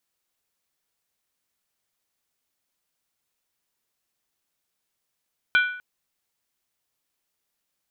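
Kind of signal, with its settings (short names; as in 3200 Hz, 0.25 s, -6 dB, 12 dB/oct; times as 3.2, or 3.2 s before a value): skin hit length 0.25 s, lowest mode 1480 Hz, decay 0.60 s, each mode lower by 6 dB, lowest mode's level -14 dB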